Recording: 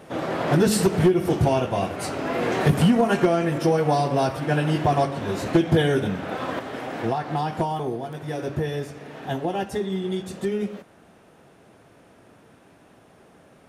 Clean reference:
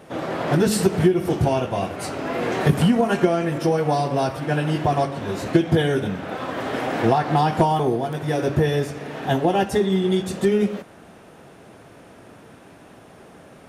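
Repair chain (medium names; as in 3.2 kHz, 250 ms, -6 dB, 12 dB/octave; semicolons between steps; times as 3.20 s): clip repair -11 dBFS; trim 0 dB, from 6.59 s +7 dB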